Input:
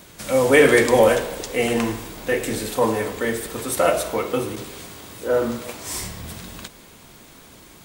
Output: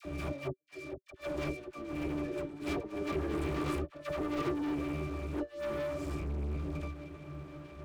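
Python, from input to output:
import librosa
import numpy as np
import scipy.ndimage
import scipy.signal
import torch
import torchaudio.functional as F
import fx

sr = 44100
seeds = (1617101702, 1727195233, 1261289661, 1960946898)

y = fx.doppler_pass(x, sr, speed_mps=20, closest_m=17.0, pass_at_s=1.81)
y = fx.octave_resonator(y, sr, note='D', decay_s=0.39)
y = fx.over_compress(y, sr, threshold_db=-55.0, ratio=-0.5)
y = fx.high_shelf(y, sr, hz=6200.0, db=7.0)
y = fx.leveller(y, sr, passes=5)
y = fx.peak_eq(y, sr, hz=380.0, db=11.5, octaves=0.28)
y = fx.dispersion(y, sr, late='lows', ms=53.0, hz=870.0)
y = y * librosa.db_to_amplitude(3.5)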